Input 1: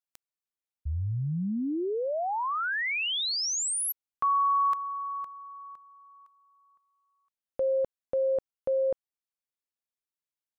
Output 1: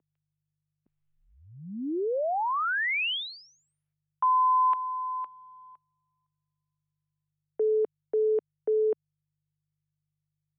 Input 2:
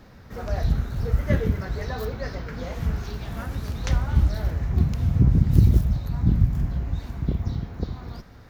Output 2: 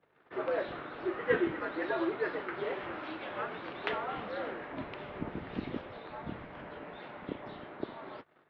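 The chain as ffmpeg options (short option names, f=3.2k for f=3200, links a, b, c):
-af "agate=range=-33dB:threshold=-40dB:ratio=3:release=41:detection=peak,aeval=exprs='val(0)+0.002*(sin(2*PI*50*n/s)+sin(2*PI*2*50*n/s)/2+sin(2*PI*3*50*n/s)/3+sin(2*PI*4*50*n/s)/4+sin(2*PI*5*50*n/s)/5)':c=same,highpass=f=400:t=q:w=0.5412,highpass=f=400:t=q:w=1.307,lowpass=f=3.3k:t=q:w=0.5176,lowpass=f=3.3k:t=q:w=0.7071,lowpass=f=3.3k:t=q:w=1.932,afreqshift=-100,volume=2dB"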